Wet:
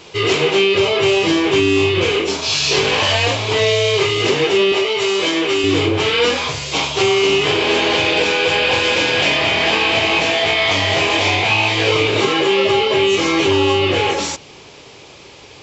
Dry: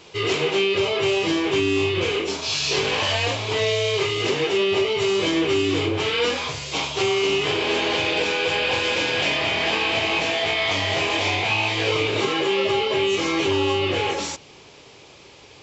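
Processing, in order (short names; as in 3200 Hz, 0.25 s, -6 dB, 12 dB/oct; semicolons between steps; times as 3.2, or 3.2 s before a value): 4.72–5.64 HPF 460 Hz 6 dB/oct; gain +6.5 dB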